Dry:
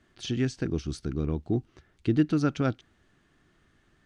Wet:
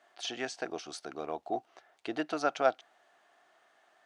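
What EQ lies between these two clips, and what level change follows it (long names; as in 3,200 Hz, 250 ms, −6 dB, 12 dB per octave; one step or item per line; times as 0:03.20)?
high-pass with resonance 700 Hz, resonance Q 4.8
0.0 dB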